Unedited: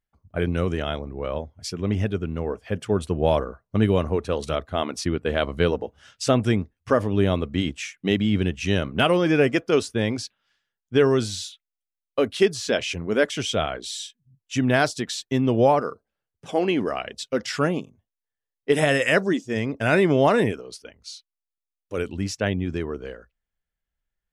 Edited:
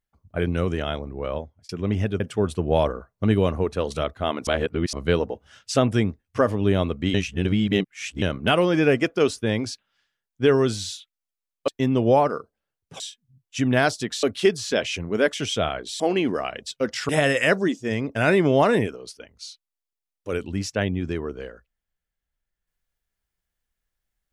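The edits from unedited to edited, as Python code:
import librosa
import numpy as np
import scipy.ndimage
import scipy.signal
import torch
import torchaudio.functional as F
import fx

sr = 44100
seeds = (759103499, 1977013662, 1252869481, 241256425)

y = fx.edit(x, sr, fx.fade_out_span(start_s=1.35, length_s=0.34),
    fx.cut(start_s=2.2, length_s=0.52),
    fx.reverse_span(start_s=4.99, length_s=0.46),
    fx.reverse_span(start_s=7.66, length_s=1.08),
    fx.swap(start_s=12.2, length_s=1.77, other_s=15.2, other_length_s=1.32),
    fx.cut(start_s=17.61, length_s=1.13), tone=tone)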